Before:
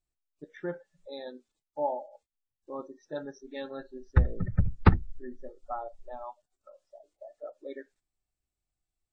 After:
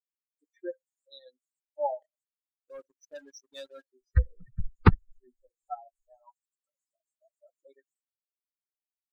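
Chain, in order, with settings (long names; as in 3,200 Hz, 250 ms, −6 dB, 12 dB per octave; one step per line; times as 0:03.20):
spectral dynamics exaggerated over time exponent 3
0:02.02–0:03.93: leveller curve on the samples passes 2
level +3.5 dB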